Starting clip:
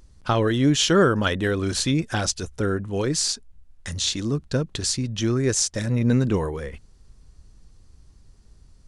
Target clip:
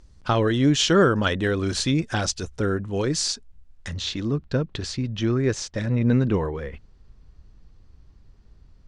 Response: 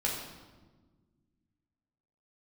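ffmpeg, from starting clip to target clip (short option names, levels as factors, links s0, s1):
-af "asetnsamples=n=441:p=0,asendcmd='3.88 lowpass f 3500',lowpass=7200"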